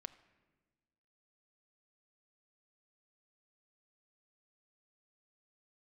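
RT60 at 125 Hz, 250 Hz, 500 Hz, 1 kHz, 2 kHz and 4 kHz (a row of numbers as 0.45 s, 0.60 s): 1.7 s, 1.7 s, 1.5 s, 1.2 s, 1.2 s, 1.0 s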